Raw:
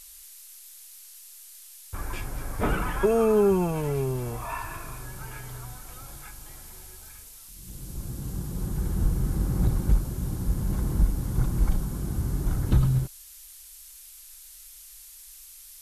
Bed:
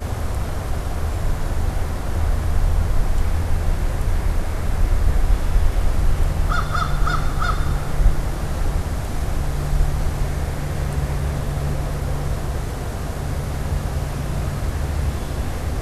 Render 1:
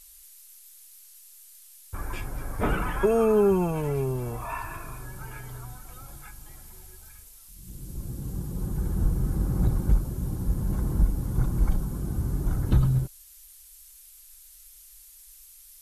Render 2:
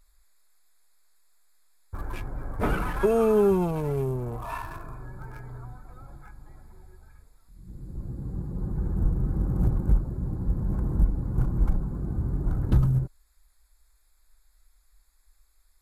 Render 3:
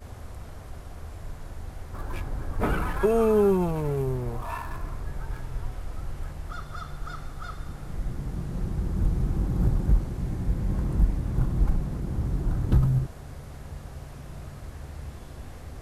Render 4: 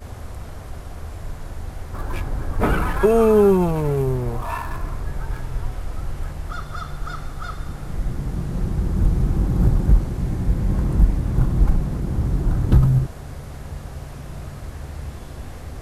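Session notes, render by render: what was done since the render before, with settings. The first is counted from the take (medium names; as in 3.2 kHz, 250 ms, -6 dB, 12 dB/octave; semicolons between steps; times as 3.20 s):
noise reduction 6 dB, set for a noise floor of -48 dBFS
local Wiener filter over 15 samples
add bed -16.5 dB
trim +6.5 dB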